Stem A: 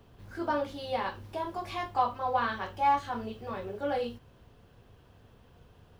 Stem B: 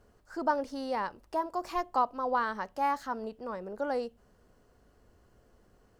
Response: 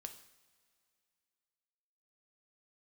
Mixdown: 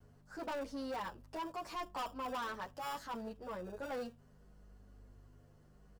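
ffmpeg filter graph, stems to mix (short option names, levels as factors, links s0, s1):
-filter_complex "[0:a]highpass=f=160:w=0.5412,highpass=f=160:w=1.3066,acrusher=samples=21:mix=1:aa=0.000001,aeval=exprs='sgn(val(0))*max(abs(val(0))-0.00355,0)':c=same,volume=0.126[s0];[1:a]aeval=exprs='val(0)+0.00178*(sin(2*PI*50*n/s)+sin(2*PI*2*50*n/s)/2+sin(2*PI*3*50*n/s)/3+sin(2*PI*4*50*n/s)/4+sin(2*PI*5*50*n/s)/5)':c=same,asplit=2[s1][s2];[s2]adelay=9.5,afreqshift=-0.74[s3];[s1][s3]amix=inputs=2:normalize=1,volume=-1,adelay=3.7,volume=0.891[s4];[s0][s4]amix=inputs=2:normalize=0,asoftclip=type=tanh:threshold=0.015"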